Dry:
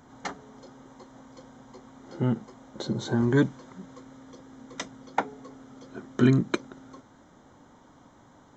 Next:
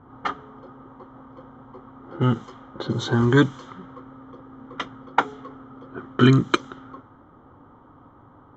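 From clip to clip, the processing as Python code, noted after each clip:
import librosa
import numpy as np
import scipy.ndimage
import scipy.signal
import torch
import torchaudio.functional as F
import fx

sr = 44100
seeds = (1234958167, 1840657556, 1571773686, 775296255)

y = fx.env_lowpass(x, sr, base_hz=880.0, full_db=-24.5)
y = fx.graphic_eq_31(y, sr, hz=(100, 200, 630, 1250, 3150), db=(6, -8, -6, 11, 10))
y = y * 10.0 ** (5.5 / 20.0)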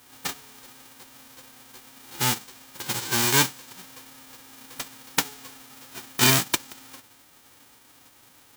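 y = fx.envelope_flatten(x, sr, power=0.1)
y = y * 10.0 ** (-4.0 / 20.0)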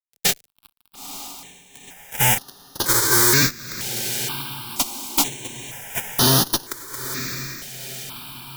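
y = fx.fuzz(x, sr, gain_db=35.0, gate_db=-38.0)
y = fx.echo_diffused(y, sr, ms=932, feedback_pct=53, wet_db=-10.5)
y = fx.phaser_held(y, sr, hz=2.1, low_hz=290.0, high_hz=7700.0)
y = y * 10.0 ** (2.0 / 20.0)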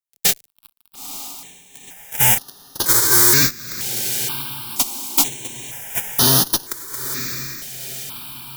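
y = fx.high_shelf(x, sr, hz=6000.0, db=6.5)
y = y * 10.0 ** (-1.0 / 20.0)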